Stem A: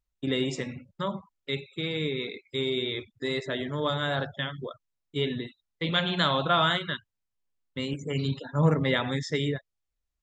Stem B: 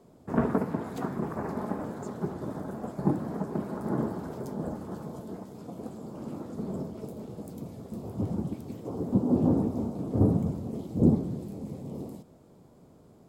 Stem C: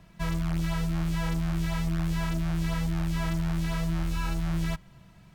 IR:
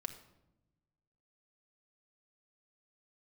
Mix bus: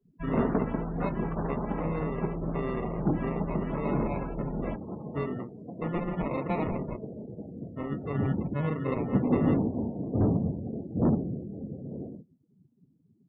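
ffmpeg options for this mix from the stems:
-filter_complex "[0:a]acrusher=samples=28:mix=1:aa=0.000001,volume=-2.5dB[link_01];[1:a]asoftclip=type=hard:threshold=-19dB,volume=0dB[link_02];[2:a]aemphasis=mode=production:type=50fm,volume=-6.5dB[link_03];[link_01][link_03]amix=inputs=2:normalize=0,alimiter=limit=-21.5dB:level=0:latency=1:release=269,volume=0dB[link_04];[link_02][link_04]amix=inputs=2:normalize=0,acrossover=split=3000[link_05][link_06];[link_06]acompressor=threshold=-51dB:ratio=4:attack=1:release=60[link_07];[link_05][link_07]amix=inputs=2:normalize=0,afftdn=noise_reduction=35:noise_floor=-42"

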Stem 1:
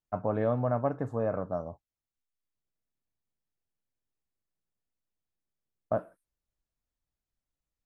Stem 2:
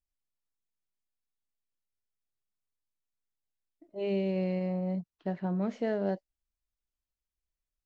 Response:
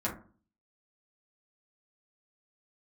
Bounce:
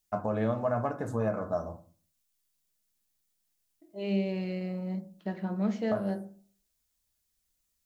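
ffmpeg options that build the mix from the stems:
-filter_complex "[0:a]highshelf=frequency=3100:gain=10.5,volume=-2.5dB,asplit=2[link_01][link_02];[link_02]volume=-8dB[link_03];[1:a]bandreject=frequency=79.55:width_type=h:width=4,bandreject=frequency=159.1:width_type=h:width=4,bandreject=frequency=238.65:width_type=h:width=4,bandreject=frequency=318.2:width_type=h:width=4,bandreject=frequency=397.75:width_type=h:width=4,bandreject=frequency=477.3:width_type=h:width=4,bandreject=frequency=556.85:width_type=h:width=4,bandreject=frequency=636.4:width_type=h:width=4,bandreject=frequency=715.95:width_type=h:width=4,bandreject=frequency=795.5:width_type=h:width=4,bandreject=frequency=875.05:width_type=h:width=4,volume=-4dB,asplit=2[link_04][link_05];[link_05]volume=-9.5dB[link_06];[2:a]atrim=start_sample=2205[link_07];[link_03][link_06]amix=inputs=2:normalize=0[link_08];[link_08][link_07]afir=irnorm=-1:irlink=0[link_09];[link_01][link_04][link_09]amix=inputs=3:normalize=0,highshelf=frequency=2300:gain=7.5,alimiter=limit=-18.5dB:level=0:latency=1:release=293"

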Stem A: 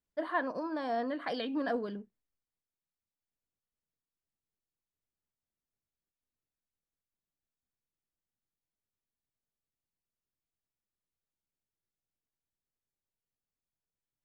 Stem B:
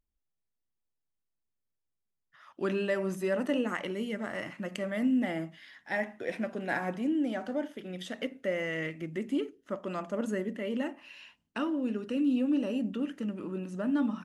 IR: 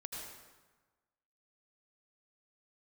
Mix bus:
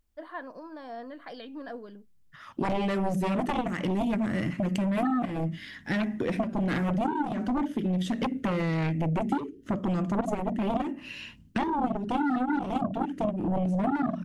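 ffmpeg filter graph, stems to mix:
-filter_complex "[0:a]volume=-7dB[link_01];[1:a]asubboost=boost=9.5:cutoff=240,aeval=exprs='0.398*(cos(1*acos(clip(val(0)/0.398,-1,1)))-cos(1*PI/2))+0.178*(cos(7*acos(clip(val(0)/0.398,-1,1)))-cos(7*PI/2))':channel_layout=same,acompressor=threshold=-29dB:ratio=6,volume=3dB[link_02];[link_01][link_02]amix=inputs=2:normalize=0"

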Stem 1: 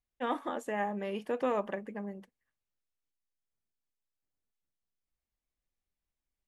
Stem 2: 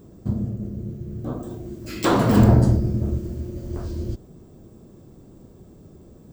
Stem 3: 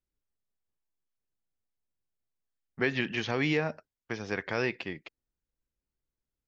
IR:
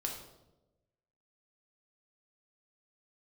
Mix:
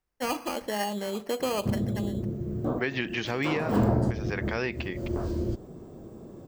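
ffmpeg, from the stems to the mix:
-filter_complex "[0:a]acrusher=samples=12:mix=1:aa=0.000001,volume=3dB,asplit=2[link_01][link_02];[link_02]volume=-15dB[link_03];[1:a]equalizer=frequency=660:width=0.34:gain=9,adelay=1400,volume=-3dB[link_04];[2:a]volume=2dB,asplit=2[link_05][link_06];[link_06]apad=whole_len=340523[link_07];[link_04][link_07]sidechaincompress=threshold=-40dB:ratio=4:attack=16:release=109[link_08];[3:a]atrim=start_sample=2205[link_09];[link_03][link_09]afir=irnorm=-1:irlink=0[link_10];[link_01][link_08][link_05][link_10]amix=inputs=4:normalize=0,acompressor=threshold=-25dB:ratio=2.5"

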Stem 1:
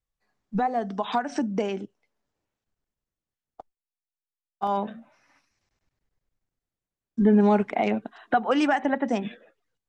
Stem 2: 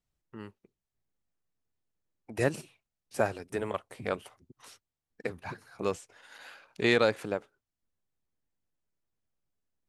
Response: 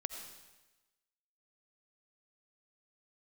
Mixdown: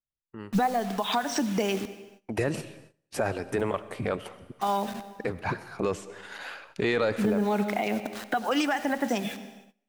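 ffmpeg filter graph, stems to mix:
-filter_complex "[0:a]highshelf=frequency=2700:gain=12,acrusher=bits=6:mix=0:aa=0.000001,volume=1dB,asplit=2[link_01][link_02];[link_02]volume=-6dB[link_03];[1:a]highshelf=frequency=4800:gain=-7.5,dynaudnorm=framelen=650:gausssize=5:maxgain=9dB,alimiter=limit=-15.5dB:level=0:latency=1:release=11,volume=0dB,asplit=3[link_04][link_05][link_06];[link_05]volume=-7dB[link_07];[link_06]apad=whole_len=435836[link_08];[link_01][link_08]sidechaincompress=threshold=-38dB:ratio=8:attack=16:release=537[link_09];[2:a]atrim=start_sample=2205[link_10];[link_03][link_07]amix=inputs=2:normalize=0[link_11];[link_11][link_10]afir=irnorm=-1:irlink=0[link_12];[link_09][link_04][link_12]amix=inputs=3:normalize=0,agate=range=-18dB:threshold=-52dB:ratio=16:detection=peak,alimiter=limit=-16.5dB:level=0:latency=1:release=316"

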